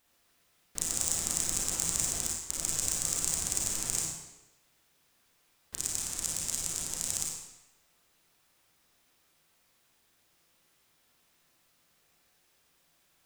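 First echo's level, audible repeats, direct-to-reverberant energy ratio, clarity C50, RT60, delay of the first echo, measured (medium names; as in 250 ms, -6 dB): no echo, no echo, -3.5 dB, -0.5 dB, 0.95 s, no echo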